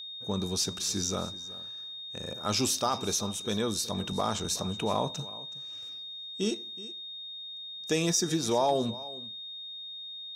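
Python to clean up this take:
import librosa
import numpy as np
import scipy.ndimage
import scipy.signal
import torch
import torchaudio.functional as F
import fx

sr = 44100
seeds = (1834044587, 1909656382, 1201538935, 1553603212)

y = fx.fix_declip(x, sr, threshold_db=-16.5)
y = fx.notch(y, sr, hz=3700.0, q=30.0)
y = fx.fix_echo_inverse(y, sr, delay_ms=373, level_db=-18.5)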